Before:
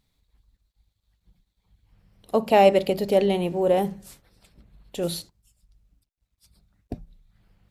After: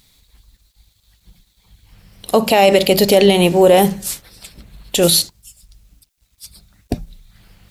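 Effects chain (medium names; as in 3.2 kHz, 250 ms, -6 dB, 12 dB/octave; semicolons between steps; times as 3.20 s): treble shelf 2.1 kHz +12 dB; loudness maximiser +13.5 dB; trim -1 dB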